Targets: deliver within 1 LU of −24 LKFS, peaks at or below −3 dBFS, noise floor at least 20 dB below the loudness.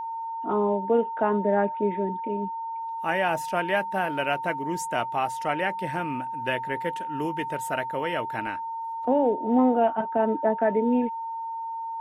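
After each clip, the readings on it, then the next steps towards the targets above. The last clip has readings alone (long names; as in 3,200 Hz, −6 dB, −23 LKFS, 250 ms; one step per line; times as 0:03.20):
interfering tone 910 Hz; level of the tone −30 dBFS; integrated loudness −26.5 LKFS; sample peak −11.0 dBFS; target loudness −24.0 LKFS
→ notch filter 910 Hz, Q 30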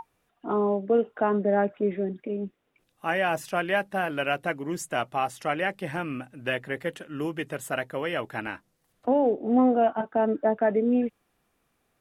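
interfering tone none found; integrated loudness −27.0 LKFS; sample peak −11.5 dBFS; target loudness −24.0 LKFS
→ level +3 dB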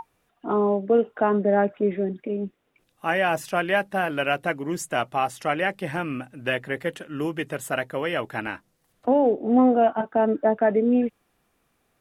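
integrated loudness −24.0 LKFS; sample peak −8.5 dBFS; background noise floor −70 dBFS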